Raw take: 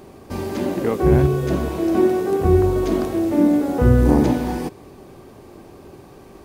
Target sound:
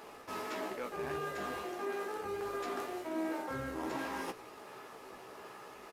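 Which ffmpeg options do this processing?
-filter_complex "[0:a]highpass=f=960:p=1,equalizer=f=1.4k:w=0.69:g=7.5,areverse,acompressor=threshold=-33dB:ratio=6,areverse,flanger=delay=3.6:depth=9.9:regen=-64:speed=1.1:shape=triangular,asplit=2[a][b];[b]acrusher=samples=16:mix=1:aa=0.000001:lfo=1:lforange=25.6:lforate=1.3,volume=-10.5dB[c];[a][c]amix=inputs=2:normalize=0,asplit=2[d][e];[e]adelay=17,volume=-7dB[f];[d][f]amix=inputs=2:normalize=0,asetrate=48000,aresample=44100,aresample=32000,aresample=44100,volume=-1.5dB"

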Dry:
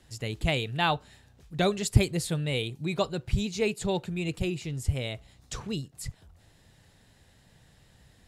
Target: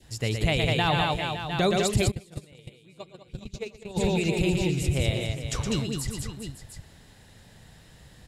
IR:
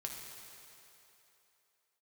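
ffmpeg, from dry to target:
-filter_complex "[0:a]adynamicequalizer=threshold=0.00398:dfrequency=1300:dqfactor=1.4:tfrequency=1300:tqfactor=1.4:attack=5:release=100:ratio=0.375:range=2.5:mode=cutabove:tftype=bell,aecho=1:1:117|199|408|560|706:0.473|0.562|0.282|0.188|0.266,alimiter=limit=-19dB:level=0:latency=1:release=64,asplit=3[a][b][c];[a]afade=t=out:st=2.1:d=0.02[d];[b]agate=range=-28dB:threshold=-24dB:ratio=16:detection=peak,afade=t=in:st=2.1:d=0.02,afade=t=out:st=3.96:d=0.02[e];[c]afade=t=in:st=3.96:d=0.02[f];[d][e][f]amix=inputs=3:normalize=0,volume=5dB"

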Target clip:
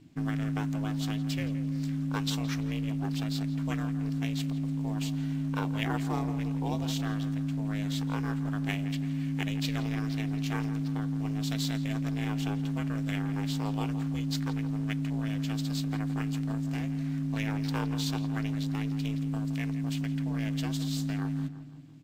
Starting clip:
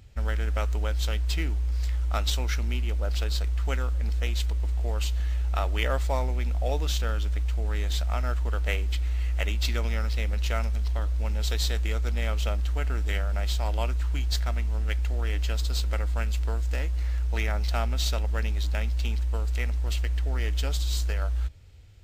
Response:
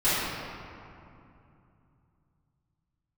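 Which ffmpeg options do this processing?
-filter_complex "[0:a]aeval=exprs='val(0)*sin(2*PI*210*n/s)':c=same,asplit=2[a][b];[b]adelay=168,lowpass=f=2.1k:p=1,volume=-11dB,asplit=2[c][d];[d]adelay=168,lowpass=f=2.1k:p=1,volume=0.54,asplit=2[e][f];[f]adelay=168,lowpass=f=2.1k:p=1,volume=0.54,asplit=2[g][h];[h]adelay=168,lowpass=f=2.1k:p=1,volume=0.54,asplit=2[i][j];[j]adelay=168,lowpass=f=2.1k:p=1,volume=0.54,asplit=2[k][l];[l]adelay=168,lowpass=f=2.1k:p=1,volume=0.54[m];[a][c][e][g][i][k][m]amix=inputs=7:normalize=0,volume=-2dB"

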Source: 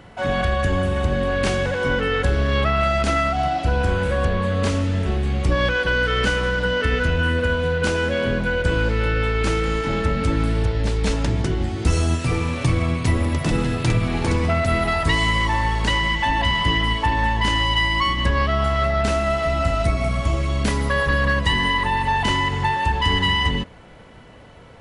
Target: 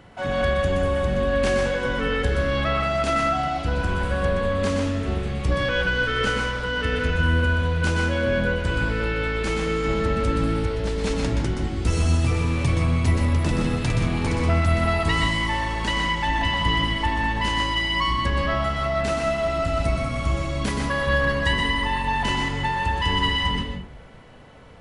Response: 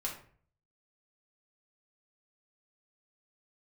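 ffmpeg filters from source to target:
-filter_complex "[0:a]asplit=2[a][b];[1:a]atrim=start_sample=2205,adelay=122[c];[b][c]afir=irnorm=-1:irlink=0,volume=-4dB[d];[a][d]amix=inputs=2:normalize=0,volume=-4dB"

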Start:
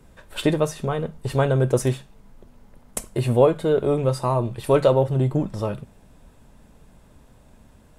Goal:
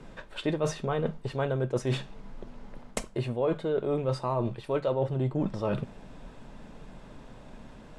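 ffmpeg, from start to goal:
-af "lowpass=4.9k,equalizer=f=71:t=o:w=0.83:g=-14.5,areverse,acompressor=threshold=-33dB:ratio=6,areverse,volume=6.5dB"

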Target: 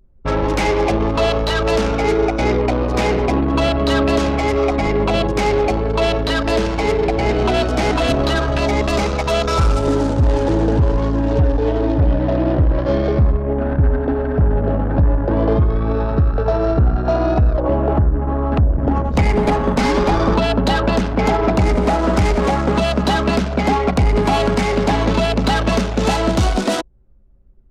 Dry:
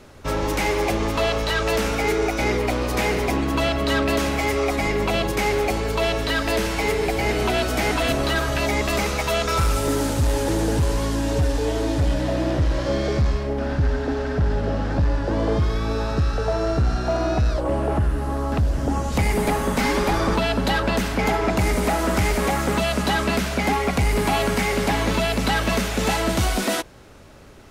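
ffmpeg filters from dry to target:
-af "adynamicsmooth=sensitivity=6.5:basefreq=5.6k,adynamicequalizer=threshold=0.0112:dfrequency=2000:dqfactor=1.3:tfrequency=2000:tqfactor=1.3:attack=5:release=100:ratio=0.375:range=3:mode=cutabove:tftype=bell,anlmdn=158,volume=6dB"

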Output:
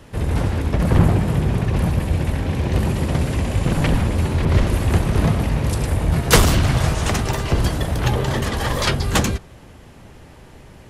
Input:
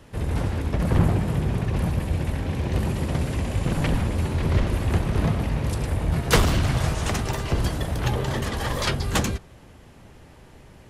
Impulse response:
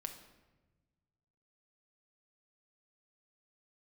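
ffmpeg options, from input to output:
-filter_complex "[0:a]asettb=1/sr,asplit=3[a][b][c];[a]atrim=end=4.454[d];[b]atrim=start=4.45:end=6.55,asetpts=PTS-STARTPTS,afade=t=in:d=0.004:c=qsin,afade=t=out:st=2.096:d=0.004:c=qsin,adynamicequalizer=threshold=0.00891:dfrequency=5200:dqfactor=0.7:tfrequency=5200:tqfactor=0.7:attack=5:release=100:ratio=0.375:range=3:mode=boostabove:tftype=highshelf[e];[c]atrim=start=6.546[f];[d][e]acrossfade=d=0.004:c1=hsin:c2=qsin[g];[g][f]acrossfade=d=0.004:c1=qsin:c2=hsin,volume=5dB"

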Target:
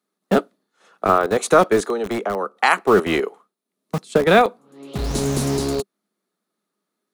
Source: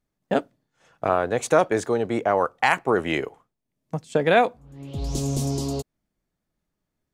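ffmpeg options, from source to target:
-filter_complex "[0:a]equalizer=f=125:t=o:w=0.33:g=-4,equalizer=f=200:t=o:w=0.33:g=10,equalizer=f=400:t=o:w=0.33:g=7,equalizer=f=1.25k:t=o:w=0.33:g=9,equalizer=f=4k:t=o:w=0.33:g=7,equalizer=f=10k:t=o:w=0.33:g=8,asettb=1/sr,asplit=3[a][b][c];[a]atrim=end=1.814[d];[b]atrim=start=1.81:end=2.57,asetpts=PTS-STARTPTS,afade=t=in:d=0.004:c=qsin,afade=t=out:st=0.756:d=0.004:c=qsin,acrossover=split=120|260|550[e][f][g][h];[e]acompressor=threshold=-42dB:ratio=4[i];[f]acompressor=threshold=-29dB:ratio=4[j];[g]acompressor=threshold=-29dB:ratio=4[k];[h]acompressor=threshold=-28dB:ratio=4[l];[i][j][k][l]amix=inputs=4:normalize=0[m];[c]atrim=start=2.566[n];[d][m]acrossfade=d=0.004:c1=hsin:c2=qsin[o];[o][n]acrossfade=d=0.004:c1=qsin:c2=hsin,acrossover=split=220|450|2200[p][q][r][s];[p]acrusher=bits=4:mix=0:aa=0.000001[t];[t][q][r][s]amix=inputs=4:normalize=0,volume=2dB"

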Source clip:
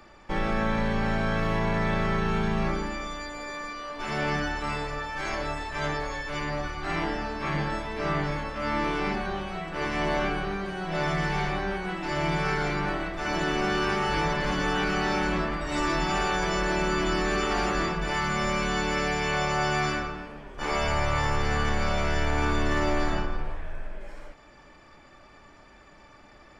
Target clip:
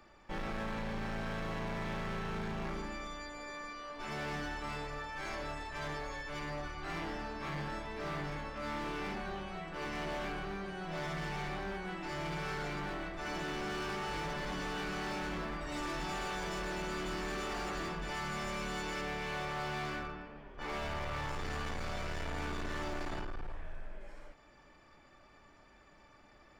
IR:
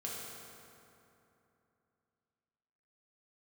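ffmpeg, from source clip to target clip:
-filter_complex "[0:a]asettb=1/sr,asplit=3[a][b][c];[a]atrim=end=19.014[d];[b]atrim=start=19.01:end=21.29,asetpts=PTS-STARTPTS,afade=t=in:d=0.004:c=qsin,afade=t=out:st=2.276:d=0.004:c=qsin,lowpass=4.1k[e];[c]atrim=start=21.286[f];[d][e]acrossfade=d=0.004:c1=hsin:c2=qsin[g];[g][f]acrossfade=d=0.004:c1=qsin:c2=hsin,asoftclip=type=hard:threshold=-27dB,volume=-8.5dB"

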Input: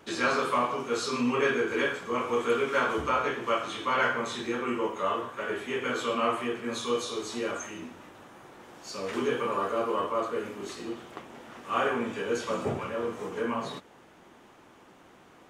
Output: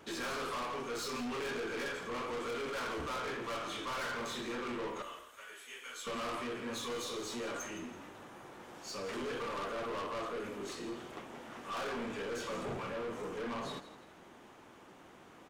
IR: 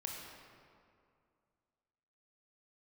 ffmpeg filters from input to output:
-filter_complex "[0:a]asettb=1/sr,asplit=3[a][b][c];[a]atrim=end=5.024[d];[b]atrim=start=5.02:end=6.07,asetpts=PTS-STARTPTS,afade=t=in:d=0.004:c=qsin,afade=t=out:st=1.046:d=0.004:c=qsin,aderivative[e];[c]atrim=start=6.066[f];[d][e]acrossfade=d=0.004:c1=hsin:c2=qsin[g];[g][f]acrossfade=d=0.004:c1=qsin:c2=hsin,aeval=exprs='(tanh(56.2*val(0)+0.1)-tanh(0.1))/56.2':c=same,asplit=4[h][i][j][k];[i]adelay=166,afreqshift=35,volume=-14dB[l];[j]adelay=332,afreqshift=70,volume=-23.4dB[m];[k]adelay=498,afreqshift=105,volume=-32.7dB[n];[h][l][m][n]amix=inputs=4:normalize=0,volume=-1.5dB"

